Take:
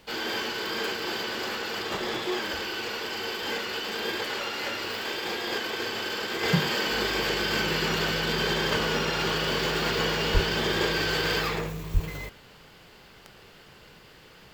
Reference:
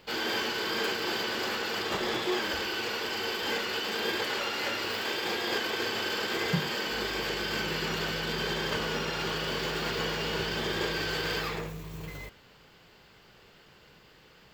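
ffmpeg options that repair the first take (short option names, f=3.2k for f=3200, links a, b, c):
-filter_complex "[0:a]adeclick=t=4,asplit=3[a][b][c];[a]afade=t=out:st=10.33:d=0.02[d];[b]highpass=f=140:w=0.5412,highpass=f=140:w=1.3066,afade=t=in:st=10.33:d=0.02,afade=t=out:st=10.45:d=0.02[e];[c]afade=t=in:st=10.45:d=0.02[f];[d][e][f]amix=inputs=3:normalize=0,asplit=3[g][h][i];[g]afade=t=out:st=11.93:d=0.02[j];[h]highpass=f=140:w=0.5412,highpass=f=140:w=1.3066,afade=t=in:st=11.93:d=0.02,afade=t=out:st=12.05:d=0.02[k];[i]afade=t=in:st=12.05:d=0.02[l];[j][k][l]amix=inputs=3:normalize=0,agate=range=-21dB:threshold=-43dB,asetnsamples=n=441:p=0,asendcmd='6.43 volume volume -5dB',volume=0dB"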